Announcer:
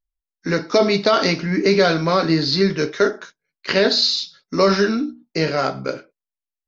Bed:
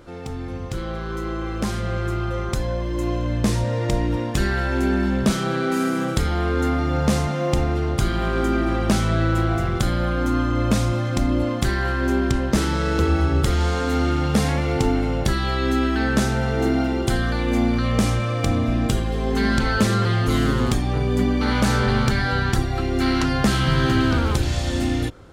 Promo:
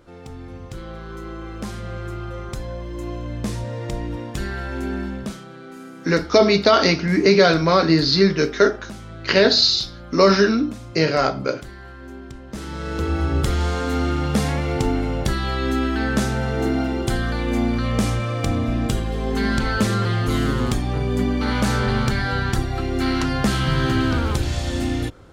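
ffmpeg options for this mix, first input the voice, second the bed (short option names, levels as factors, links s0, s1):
-filter_complex "[0:a]adelay=5600,volume=1.19[s0];[1:a]volume=3.16,afade=t=out:st=5:d=0.46:silence=0.281838,afade=t=in:st=12.46:d=0.92:silence=0.158489[s1];[s0][s1]amix=inputs=2:normalize=0"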